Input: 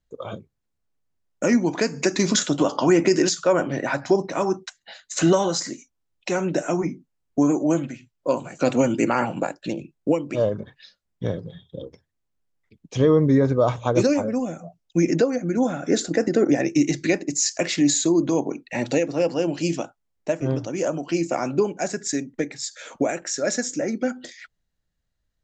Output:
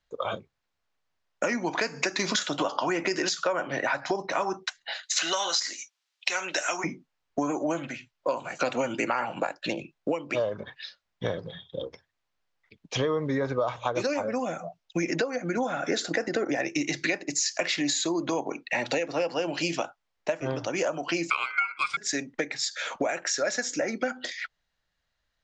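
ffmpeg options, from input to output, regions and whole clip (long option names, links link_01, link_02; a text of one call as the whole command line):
ffmpeg -i in.wav -filter_complex "[0:a]asettb=1/sr,asplit=3[link_01][link_02][link_03];[link_01]atrim=end=5.034[link_04];[link_02]atrim=start=5.03:end=6.84,asetpts=PTS-STARTPTS,afade=type=in:duration=0.004:curve=qsin,afade=type=out:start_time=1.806:duration=0.004:curve=qsin,highpass=270,acrossover=split=6400[link_05][link_06];[link_06]acompressor=threshold=-42dB:ratio=4:attack=1:release=60[link_07];[link_05][link_07]amix=inputs=2:normalize=0,tiltshelf=frequency=1400:gain=-10[link_08];[link_03]atrim=start=6.836[link_09];[link_04][link_08]acrossfade=duration=0.004:curve1=hsin:curve2=qsin[link_10];[link_10][link_09]acrossfade=duration=0.004:curve1=qsin:curve2=hsin,asettb=1/sr,asplit=3[link_11][link_12][link_13];[link_11]atrim=end=21.304[link_14];[link_12]atrim=start=21.3:end=21.97,asetpts=PTS-STARTPTS,afade=type=in:duration=0.004:curve=qsin,afade=type=out:start_time=0.666:duration=0.004:curve=qsin,highpass=frequency=450:width_type=q:width=1.8,aeval=exprs='val(0)*sin(2*PI*1800*n/s)':channel_layout=same[link_15];[link_13]atrim=start=21.966[link_16];[link_14][link_15]acrossfade=duration=0.004:curve1=hsin:curve2=qsin[link_17];[link_17][link_16]acrossfade=duration=0.004:curve1=qsin:curve2=hsin,acrossover=split=600 5900:gain=0.2 1 0.0794[link_18][link_19][link_20];[link_18][link_19][link_20]amix=inputs=3:normalize=0,acompressor=threshold=-33dB:ratio=6,volume=8.5dB" out.wav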